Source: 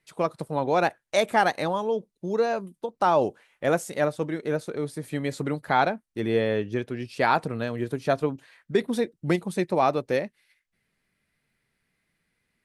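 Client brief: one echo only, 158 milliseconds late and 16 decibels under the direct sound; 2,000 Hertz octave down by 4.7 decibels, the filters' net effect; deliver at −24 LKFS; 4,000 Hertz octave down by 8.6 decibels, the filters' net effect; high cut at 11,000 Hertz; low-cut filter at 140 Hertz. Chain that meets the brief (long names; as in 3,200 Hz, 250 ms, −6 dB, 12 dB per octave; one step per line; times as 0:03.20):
high-pass filter 140 Hz
low-pass filter 11,000 Hz
parametric band 2,000 Hz −4.5 dB
parametric band 4,000 Hz −9 dB
single-tap delay 158 ms −16 dB
level +3.5 dB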